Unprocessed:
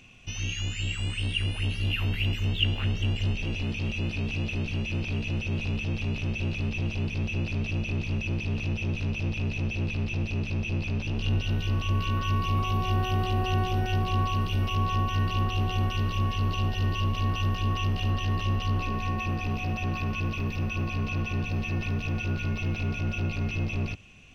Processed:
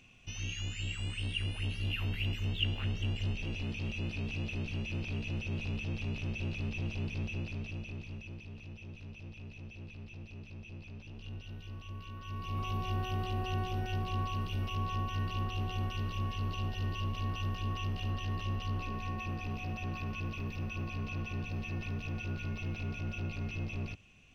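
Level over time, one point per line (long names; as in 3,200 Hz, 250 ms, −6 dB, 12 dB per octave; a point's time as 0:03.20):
0:07.20 −7 dB
0:08.53 −18 dB
0:12.18 −18 dB
0:12.65 −8.5 dB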